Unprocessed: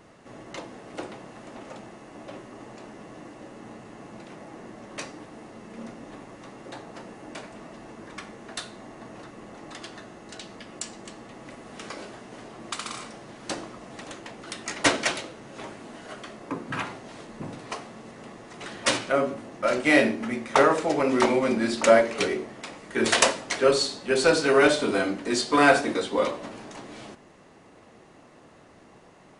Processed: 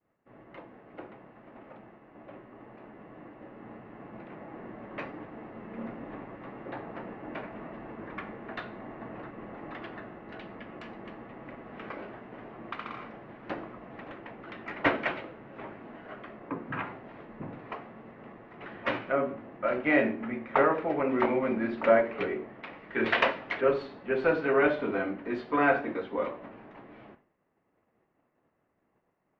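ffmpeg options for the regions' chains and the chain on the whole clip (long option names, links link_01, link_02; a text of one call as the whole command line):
ffmpeg -i in.wav -filter_complex "[0:a]asettb=1/sr,asplit=3[link_01][link_02][link_03];[link_01]atrim=end=22.634[link_04];[link_02]atrim=start=22.63:end=23.61,asetpts=PTS-STARTPTS,afade=type=in:duration=0.004:curve=qsin,afade=type=out:start_time=0.976:duration=0.004:curve=qsin,lowpass=5000,highshelf=frequency=2600:gain=12[link_05];[link_03]atrim=start=23.606[link_06];[link_04][link_05]acrossfade=duration=0.004:curve1=hsin:curve2=qsin[link_07];[link_07][link_06]acrossfade=duration=0.004:curve1=qsin:curve2=hsin,lowpass=frequency=2400:width=0.5412,lowpass=frequency=2400:width=1.3066,agate=range=-33dB:threshold=-43dB:ratio=3:detection=peak,dynaudnorm=framelen=380:gausssize=21:maxgain=10dB,volume=-8.5dB" out.wav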